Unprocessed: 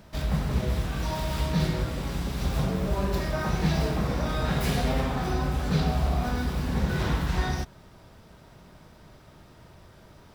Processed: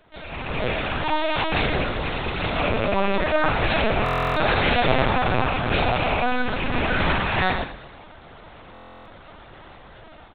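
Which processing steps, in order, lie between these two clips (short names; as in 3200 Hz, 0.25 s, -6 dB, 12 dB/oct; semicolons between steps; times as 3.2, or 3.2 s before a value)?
rattling part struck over -24 dBFS, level -26 dBFS; LPF 3000 Hz 6 dB/oct; tilt +2 dB/oct; AGC gain up to 12.5 dB; brick-wall FIR high-pass 200 Hz; feedback echo 0.121 s, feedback 46%, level -13 dB; LPC vocoder at 8 kHz pitch kept; stuck buffer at 4.04/8.73, samples 1024, times 13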